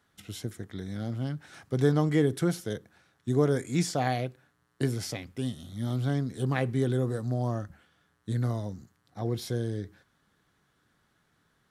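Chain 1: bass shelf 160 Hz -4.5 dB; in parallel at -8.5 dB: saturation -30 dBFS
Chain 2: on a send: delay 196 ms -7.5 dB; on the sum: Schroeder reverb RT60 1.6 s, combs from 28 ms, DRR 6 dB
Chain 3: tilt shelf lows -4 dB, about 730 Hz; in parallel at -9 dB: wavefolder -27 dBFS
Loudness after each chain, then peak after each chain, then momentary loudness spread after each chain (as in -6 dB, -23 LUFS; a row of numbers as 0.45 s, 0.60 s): -30.5 LUFS, -29.0 LUFS, -31.0 LUFS; -12.5 dBFS, -10.5 dBFS, -11.5 dBFS; 13 LU, 14 LU, 12 LU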